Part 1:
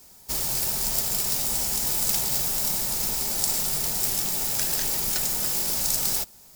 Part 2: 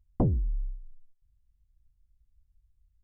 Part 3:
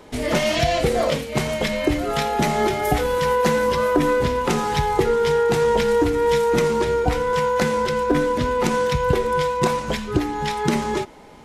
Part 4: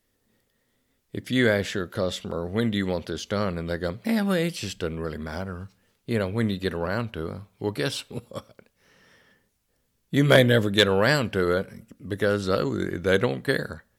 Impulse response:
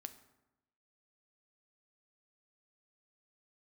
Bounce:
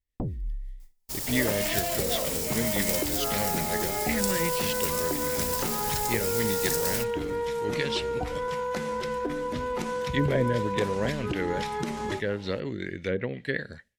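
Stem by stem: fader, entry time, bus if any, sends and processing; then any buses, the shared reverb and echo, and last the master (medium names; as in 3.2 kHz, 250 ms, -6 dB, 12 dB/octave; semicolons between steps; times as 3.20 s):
-4.5 dB, 0.80 s, no send, upward expansion 1.5:1, over -42 dBFS
+2.5 dB, 0.00 s, no send, compression, threshold -29 dBFS, peak gain reduction 8.5 dB; random flutter of the level, depth 55%
-5.5 dB, 1.15 s, no send, hum notches 50/100/150 Hz; compression, threshold -22 dBFS, peak gain reduction 9 dB
-5.0 dB, 0.00 s, no send, low-pass that closes with the level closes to 810 Hz, closed at -16 dBFS; resonant high shelf 1.6 kHz +7 dB, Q 3; rotary cabinet horn 5.5 Hz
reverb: none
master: gate with hold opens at -38 dBFS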